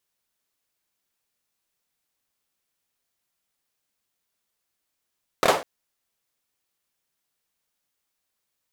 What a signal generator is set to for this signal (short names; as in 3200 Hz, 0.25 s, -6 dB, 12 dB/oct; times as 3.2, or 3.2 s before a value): hand clap length 0.20 s, bursts 3, apart 26 ms, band 620 Hz, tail 0.33 s